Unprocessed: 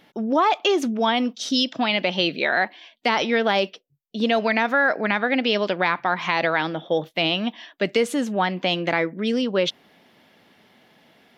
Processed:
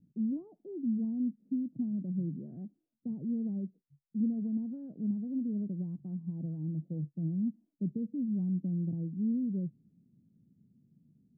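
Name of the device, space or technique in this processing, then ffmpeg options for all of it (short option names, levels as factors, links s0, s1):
the neighbour's flat through the wall: -af "lowpass=f=220:w=0.5412,lowpass=f=220:w=1.3066,equalizer=f=140:t=o:w=0.72:g=6.5,volume=0.708"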